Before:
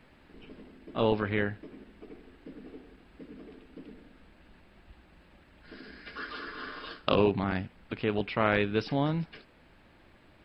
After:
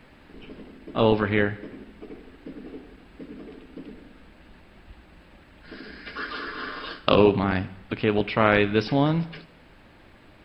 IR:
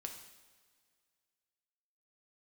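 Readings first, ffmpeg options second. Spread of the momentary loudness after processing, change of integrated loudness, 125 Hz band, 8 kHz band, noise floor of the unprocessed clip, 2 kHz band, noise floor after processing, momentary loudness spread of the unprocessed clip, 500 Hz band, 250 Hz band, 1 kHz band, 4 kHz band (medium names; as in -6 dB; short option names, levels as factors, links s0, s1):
23 LU, +7.0 dB, +6.5 dB, no reading, -59 dBFS, +6.5 dB, -53 dBFS, 23 LU, +7.0 dB, +7.0 dB, +6.5 dB, +6.5 dB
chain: -filter_complex "[0:a]asplit=2[s0][s1];[1:a]atrim=start_sample=2205,afade=t=out:st=0.41:d=0.01,atrim=end_sample=18522[s2];[s1][s2]afir=irnorm=-1:irlink=0,volume=0.596[s3];[s0][s3]amix=inputs=2:normalize=0,volume=1.58"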